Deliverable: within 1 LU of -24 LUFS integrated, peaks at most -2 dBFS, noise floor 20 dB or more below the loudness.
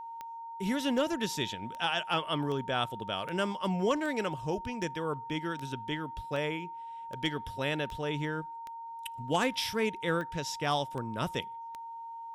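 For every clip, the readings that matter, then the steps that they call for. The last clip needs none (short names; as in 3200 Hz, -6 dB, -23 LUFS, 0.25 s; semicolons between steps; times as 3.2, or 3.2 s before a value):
clicks 16; steady tone 920 Hz; tone level -40 dBFS; loudness -33.5 LUFS; peak -17.0 dBFS; loudness target -24.0 LUFS
-> de-click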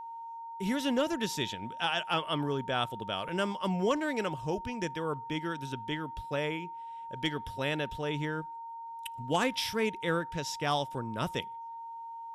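clicks 0; steady tone 920 Hz; tone level -40 dBFS
-> notch 920 Hz, Q 30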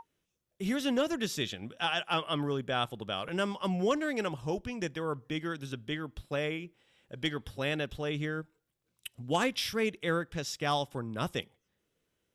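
steady tone none; loudness -33.5 LUFS; peak -17.5 dBFS; loudness target -24.0 LUFS
-> gain +9.5 dB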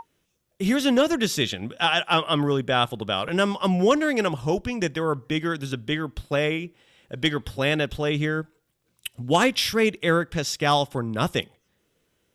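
loudness -24.0 LUFS; peak -8.0 dBFS; noise floor -72 dBFS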